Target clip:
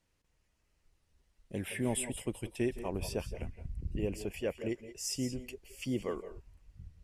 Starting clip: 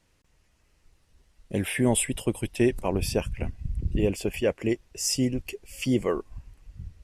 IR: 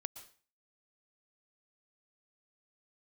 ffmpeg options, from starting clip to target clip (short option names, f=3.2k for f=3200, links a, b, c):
-filter_complex "[0:a]asettb=1/sr,asplit=3[a][b][c];[a]atrim=end=3.744[d];[b]atrim=start=3.74:end=4.22,asetpts=PTS-STARTPTS,afade=t=in:d=0.004:c=qsin,afade=t=out:st=0.476:d=0.004:c=qsin,bandreject=f=3.5k:w=6.6[e];[c]atrim=start=4.216[f];[d][e]acrossfade=d=0.004:c1=hsin:c2=qsin[g];[g][f]acrossfade=d=0.004:c1=qsin:c2=hsin[h];[1:a]atrim=start_sample=2205,afade=t=out:st=0.18:d=0.01,atrim=end_sample=8379,asetrate=30429,aresample=44100[i];[h][i]afir=irnorm=-1:irlink=0,volume=-9dB"